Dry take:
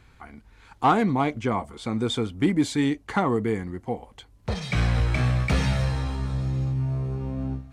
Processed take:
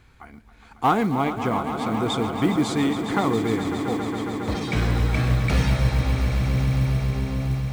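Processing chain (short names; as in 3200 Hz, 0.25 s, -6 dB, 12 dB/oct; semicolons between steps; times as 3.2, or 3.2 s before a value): swelling echo 0.137 s, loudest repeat 5, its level -12 dB; short-mantissa float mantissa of 4-bit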